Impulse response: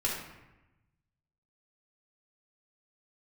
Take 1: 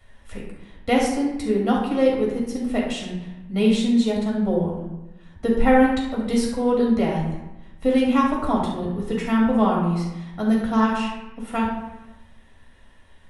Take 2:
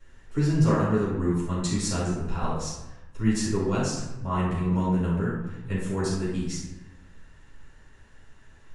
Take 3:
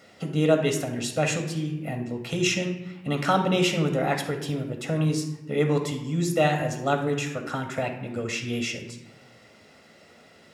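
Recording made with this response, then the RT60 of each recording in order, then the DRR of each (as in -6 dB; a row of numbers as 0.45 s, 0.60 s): 1; 1.0 s, 1.0 s, 1.0 s; -4.5 dB, -13.0 dB, 4.5 dB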